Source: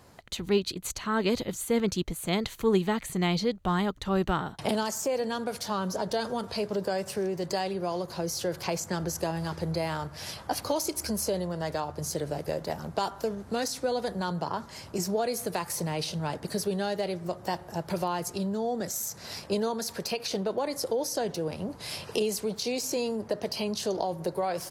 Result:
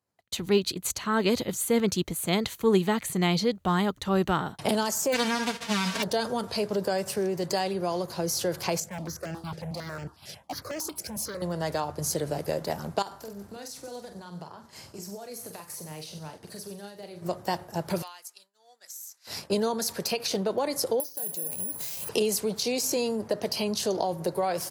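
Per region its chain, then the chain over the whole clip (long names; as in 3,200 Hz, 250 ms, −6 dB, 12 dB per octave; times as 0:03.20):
0:05.12–0:06.02: spectral envelope flattened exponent 0.1 + low-pass filter 3,900 Hz + comb filter 4.4 ms, depth 99%
0:08.80–0:11.42: high-shelf EQ 5,800 Hz −7 dB + hard clipping −30.5 dBFS + step-sequenced phaser 11 Hz 280–3,800 Hz
0:13.02–0:17.22: downward compressor 8 to 1, threshold −38 dBFS + double-tracking delay 45 ms −6.5 dB + delay with a high-pass on its return 94 ms, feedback 61%, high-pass 4,700 Hz, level −10 dB
0:18.02–0:19.27: Bessel high-pass filter 2,000 Hz + downward compressor 10 to 1, threshold −38 dBFS
0:21.00–0:22.09: high-shelf EQ 9,700 Hz +5 dB + downward compressor 20 to 1, threshold −40 dBFS + bad sample-rate conversion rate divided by 4×, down filtered, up zero stuff
whole clip: downward expander −37 dBFS; high-pass filter 76 Hz; high-shelf EQ 8,300 Hz +6.5 dB; level +2 dB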